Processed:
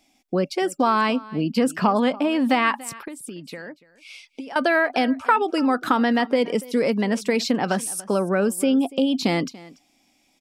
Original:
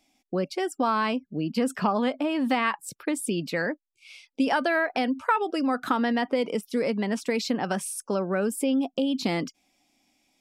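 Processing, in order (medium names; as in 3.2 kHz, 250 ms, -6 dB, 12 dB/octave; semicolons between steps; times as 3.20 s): 3.00–4.56 s: compression 12:1, threshold -38 dBFS, peak gain reduction 18.5 dB; delay 287 ms -20.5 dB; trim +5 dB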